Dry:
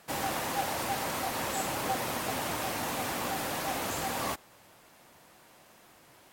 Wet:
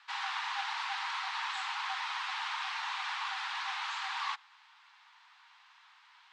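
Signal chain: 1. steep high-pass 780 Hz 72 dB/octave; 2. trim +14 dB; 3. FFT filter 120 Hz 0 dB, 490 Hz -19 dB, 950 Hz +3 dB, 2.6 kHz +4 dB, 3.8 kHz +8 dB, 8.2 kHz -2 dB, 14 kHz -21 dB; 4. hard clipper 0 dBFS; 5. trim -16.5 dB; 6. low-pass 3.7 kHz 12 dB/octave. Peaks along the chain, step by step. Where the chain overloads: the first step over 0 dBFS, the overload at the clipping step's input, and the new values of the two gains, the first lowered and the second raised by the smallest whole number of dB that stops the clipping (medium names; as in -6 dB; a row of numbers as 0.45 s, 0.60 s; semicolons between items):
-21.0 dBFS, -7.0 dBFS, -5.5 dBFS, -5.5 dBFS, -22.0 dBFS, -23.0 dBFS; nothing clips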